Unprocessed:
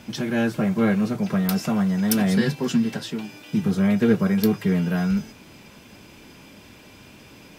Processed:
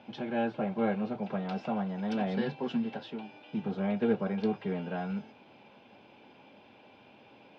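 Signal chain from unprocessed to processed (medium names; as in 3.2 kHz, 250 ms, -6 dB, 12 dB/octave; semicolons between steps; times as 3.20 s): cabinet simulation 170–3400 Hz, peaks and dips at 170 Hz -6 dB, 310 Hz -3 dB, 550 Hz +4 dB, 810 Hz +9 dB, 1.2 kHz -4 dB, 1.9 kHz -7 dB; trim -8 dB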